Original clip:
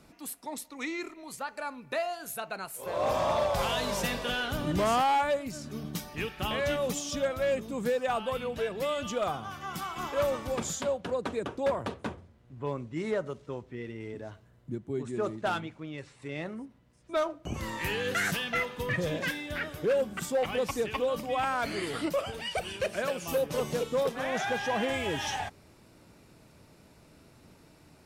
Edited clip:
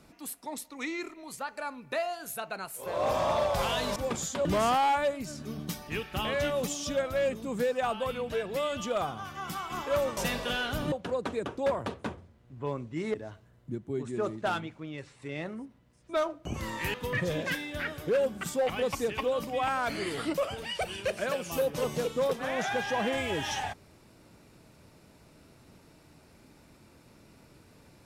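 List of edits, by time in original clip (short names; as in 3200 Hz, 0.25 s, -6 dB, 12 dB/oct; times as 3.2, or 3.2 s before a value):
3.96–4.71 swap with 10.43–10.92
13.14–14.14 cut
17.94–18.7 cut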